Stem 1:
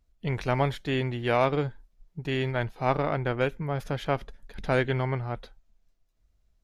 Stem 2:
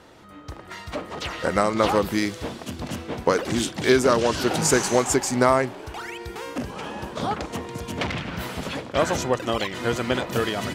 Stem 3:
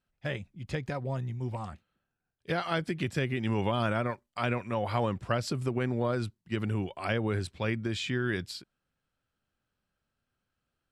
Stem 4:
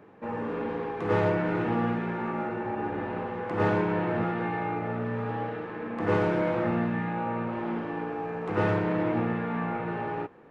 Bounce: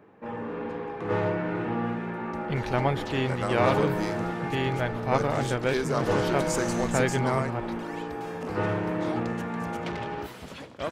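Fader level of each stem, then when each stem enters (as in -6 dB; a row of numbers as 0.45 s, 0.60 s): -0.5 dB, -11.0 dB, -18.5 dB, -2.0 dB; 2.25 s, 1.85 s, 0.00 s, 0.00 s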